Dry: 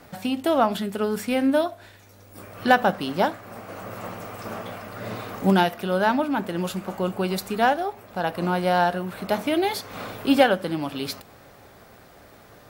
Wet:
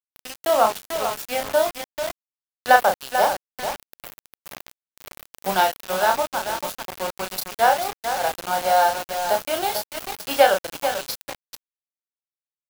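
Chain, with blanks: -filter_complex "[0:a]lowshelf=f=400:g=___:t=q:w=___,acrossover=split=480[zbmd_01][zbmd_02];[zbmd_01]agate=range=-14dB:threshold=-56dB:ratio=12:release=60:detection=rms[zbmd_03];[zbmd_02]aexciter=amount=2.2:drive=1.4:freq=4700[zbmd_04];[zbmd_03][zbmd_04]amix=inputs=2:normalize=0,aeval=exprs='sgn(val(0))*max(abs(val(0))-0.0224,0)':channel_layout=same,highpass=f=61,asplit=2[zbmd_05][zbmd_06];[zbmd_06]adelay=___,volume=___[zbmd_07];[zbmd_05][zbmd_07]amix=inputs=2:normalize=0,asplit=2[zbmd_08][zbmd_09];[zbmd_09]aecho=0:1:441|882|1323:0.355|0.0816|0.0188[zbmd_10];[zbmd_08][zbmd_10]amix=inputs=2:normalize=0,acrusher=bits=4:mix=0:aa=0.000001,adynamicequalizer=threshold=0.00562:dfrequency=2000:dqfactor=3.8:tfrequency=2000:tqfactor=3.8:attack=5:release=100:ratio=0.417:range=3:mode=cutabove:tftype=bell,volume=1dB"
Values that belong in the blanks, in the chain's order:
-12.5, 1.5, 32, -5dB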